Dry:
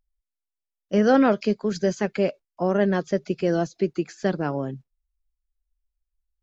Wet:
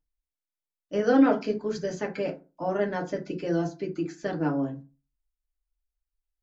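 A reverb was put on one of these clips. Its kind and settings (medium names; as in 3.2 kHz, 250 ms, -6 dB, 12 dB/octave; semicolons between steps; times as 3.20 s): FDN reverb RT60 0.31 s, low-frequency decay 1.2×, high-frequency decay 0.5×, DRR -0.5 dB; trim -7.5 dB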